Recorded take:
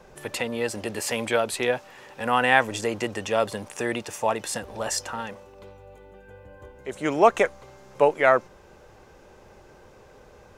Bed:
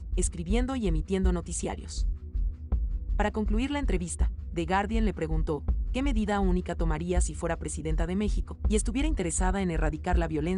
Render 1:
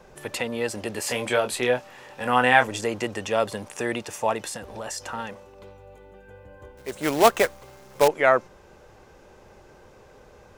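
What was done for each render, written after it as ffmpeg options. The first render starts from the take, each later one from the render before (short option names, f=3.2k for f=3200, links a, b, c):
-filter_complex "[0:a]asettb=1/sr,asplit=3[a][b][c];[a]atrim=end=1.074[d];[b]atrim=start=1.07:end=2.68,asetpts=PTS-STARTPTS,afade=t=in:d=0.004:c=qsin,afade=t=out:st=1.606:d=0.004:c=qsin,asplit=2[e][f];[f]adelay=24,volume=-6.5dB[g];[e][g]amix=inputs=2:normalize=0,atrim=end_sample=71001[h];[c]atrim=start=2.676[i];[d][h]acrossfade=d=0.004:c1=hsin:c2=qsin[j];[j][i]acrossfade=d=0.004:c1=qsin:c2=hsin,asettb=1/sr,asplit=3[k][l][m];[k]atrim=end=4.484[n];[l]atrim=start=4.48:end=5.02,asetpts=PTS-STARTPTS,afade=t=in:d=0.004:c=qsin,afade=t=out:st=0.536:d=0.004:c=qsin,acompressor=threshold=-30dB:ratio=4:attack=3.2:release=140:knee=1:detection=peak[o];[m]atrim=start=5.016[p];[n][o]acrossfade=d=0.004:c1=hsin:c2=qsin[q];[q][p]acrossfade=d=0.004:c1=qsin:c2=hsin,asettb=1/sr,asplit=3[r][s][t];[r]atrim=end=6.774[u];[s]atrim=start=6.77:end=8.08,asetpts=PTS-STARTPTS,afade=t=in:d=0.004:c=qsin,afade=t=out:st=1.306:d=0.004:c=qsin,acrusher=bits=2:mode=log:mix=0:aa=0.000001[v];[t]atrim=start=8.076[w];[u][v]acrossfade=d=0.004:c1=hsin:c2=qsin[x];[x][w]acrossfade=d=0.004:c1=qsin:c2=hsin"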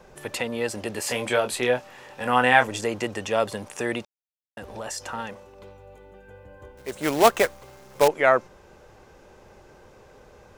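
-filter_complex "[0:a]asplit=3[a][b][c];[a]atrim=end=4.05,asetpts=PTS-STARTPTS,afade=t=out:st=4.046:d=0.004:c=hsin[d];[b]atrim=start=4.05:end=4.57,asetpts=PTS-STARTPTS,volume=0[e];[c]atrim=start=4.57,asetpts=PTS-STARTPTS,afade=t=in:d=0.004:c=hsin[f];[d][e][f]concat=n=3:v=0:a=1"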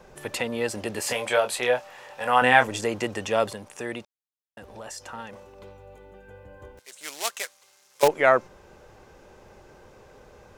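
-filter_complex "[0:a]asettb=1/sr,asplit=3[a][b][c];[a]atrim=end=1.134[d];[b]atrim=start=1.13:end=2.42,asetpts=PTS-STARTPTS,afade=t=in:d=0.004:c=qsin,afade=t=out:st=1.286:d=0.004:c=qsin,lowshelf=f=430:t=q:w=1.5:g=-7[e];[c]atrim=start=2.416[f];[d][e]acrossfade=d=0.004:c1=hsin:c2=qsin[g];[g][f]acrossfade=d=0.004:c1=qsin:c2=hsin,asettb=1/sr,asplit=3[h][i][j];[h]atrim=end=6.794[k];[i]atrim=start=6.79:end=8.03,asetpts=PTS-STARTPTS,afade=t=in:d=0.004:c=qsin,afade=t=out:st=1.236:d=0.004:c=qsin,bandpass=f=7.2k:t=q:w=0.68[l];[j]atrim=start=8.026[m];[k][l]acrossfade=d=0.004:c1=hsin:c2=qsin[n];[n][m]acrossfade=d=0.004:c1=qsin:c2=hsin,asplit=3[o][p][q];[o]atrim=end=3.532[r];[p]atrim=start=3.528:end=5.332,asetpts=PTS-STARTPTS,volume=-5.5dB[s];[q]atrim=start=5.328[t];[r][s]acrossfade=d=0.004:c1=hsin:c2=hsin[u];[u][t]acrossfade=d=0.004:c1=hsin:c2=hsin"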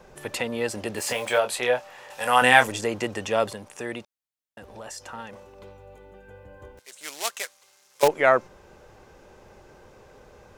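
-filter_complex "[0:a]asettb=1/sr,asplit=3[a][b][c];[a]atrim=end=0.974[d];[b]atrim=start=0.97:end=1.39,asetpts=PTS-STARTPTS,afade=t=in:d=0.004:c=qsin,afade=t=out:st=0.416:d=0.004:c=qsin,acrusher=bits=6:mix=0:aa=0.5[e];[c]atrim=start=1.386[f];[d][e]acrossfade=d=0.004:c1=hsin:c2=qsin[g];[g][f]acrossfade=d=0.004:c1=qsin:c2=hsin,asettb=1/sr,asplit=3[h][i][j];[h]atrim=end=2.104[k];[i]atrim=start=2.1:end=2.72,asetpts=PTS-STARTPTS,afade=t=in:d=0.004:c=qsin,afade=t=out:st=0.616:d=0.004:c=qsin,equalizer=f=11k:w=0.33:g=13[l];[j]atrim=start=2.716[m];[k][l]acrossfade=d=0.004:c1=hsin:c2=qsin[n];[n][m]acrossfade=d=0.004:c1=qsin:c2=hsin"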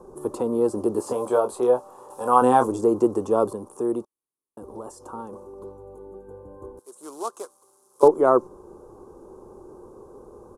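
-filter_complex "[0:a]acrossover=split=6200[a][b];[b]acompressor=threshold=-48dB:ratio=4:attack=1:release=60[c];[a][c]amix=inputs=2:normalize=0,firequalizer=gain_entry='entry(140,0);entry(360,13);entry(610,-2);entry(1100,6);entry(1900,-30);entry(3600,-18);entry(10000,7);entry(16000,-15)':delay=0.05:min_phase=1"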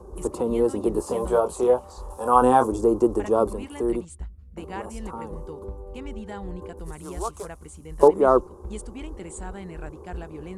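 -filter_complex "[1:a]volume=-9.5dB[a];[0:a][a]amix=inputs=2:normalize=0"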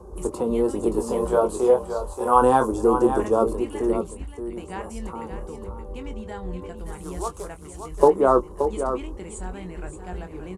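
-filter_complex "[0:a]asplit=2[a][b];[b]adelay=22,volume=-9.5dB[c];[a][c]amix=inputs=2:normalize=0,asplit=2[d][e];[e]aecho=0:1:576:0.376[f];[d][f]amix=inputs=2:normalize=0"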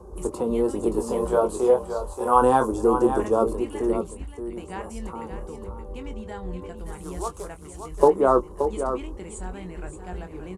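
-af "volume=-1dB"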